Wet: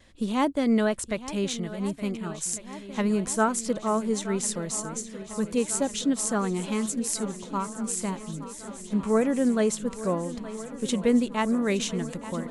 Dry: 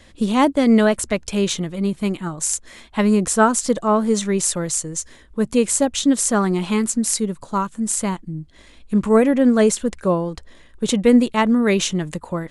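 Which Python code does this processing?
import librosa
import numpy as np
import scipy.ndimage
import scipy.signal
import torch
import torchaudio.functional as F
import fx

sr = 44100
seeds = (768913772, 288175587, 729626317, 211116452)

y = fx.vibrato(x, sr, rate_hz=0.61, depth_cents=9.1)
y = fx.echo_swing(y, sr, ms=1449, ratio=1.5, feedback_pct=67, wet_db=-15)
y = y * 10.0 ** (-8.5 / 20.0)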